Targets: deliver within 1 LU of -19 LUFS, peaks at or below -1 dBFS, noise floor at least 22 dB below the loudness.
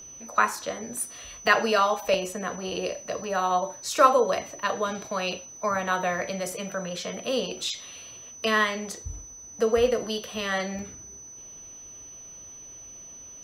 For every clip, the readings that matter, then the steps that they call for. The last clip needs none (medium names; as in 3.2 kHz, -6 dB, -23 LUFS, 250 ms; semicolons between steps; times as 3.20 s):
dropouts 7; longest dropout 1.6 ms; steady tone 6 kHz; tone level -42 dBFS; loudness -26.5 LUFS; peak level -5.0 dBFS; loudness target -19.0 LUFS
-> interpolate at 1.47/2.14/3.24/6.52/8.95/10.24/10.79 s, 1.6 ms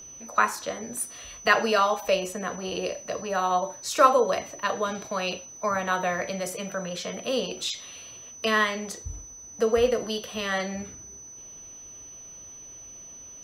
dropouts 0; steady tone 6 kHz; tone level -42 dBFS
-> band-stop 6 kHz, Q 30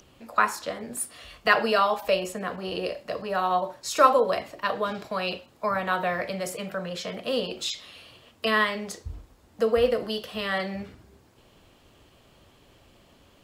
steady tone not found; loudness -26.5 LUFS; peak level -5.0 dBFS; loudness target -19.0 LUFS
-> trim +7.5 dB; peak limiter -1 dBFS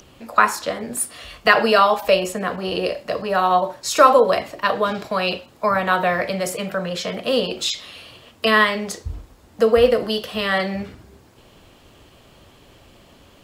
loudness -19.5 LUFS; peak level -1.0 dBFS; noise floor -51 dBFS